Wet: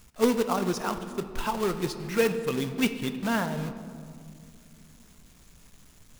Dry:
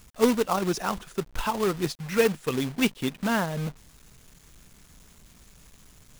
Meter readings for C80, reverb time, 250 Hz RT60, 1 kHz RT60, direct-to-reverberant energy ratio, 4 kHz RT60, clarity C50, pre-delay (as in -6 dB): 11.0 dB, 2.4 s, 3.5 s, 2.0 s, 8.5 dB, 1.1 s, 10.0 dB, 4 ms